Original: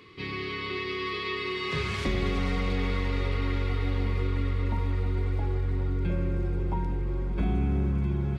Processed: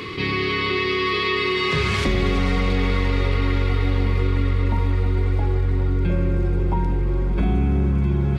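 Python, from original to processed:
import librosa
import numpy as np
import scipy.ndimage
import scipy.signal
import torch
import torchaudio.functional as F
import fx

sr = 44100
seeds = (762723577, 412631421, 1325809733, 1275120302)

y = fx.env_flatten(x, sr, amount_pct=50)
y = y * librosa.db_to_amplitude(6.0)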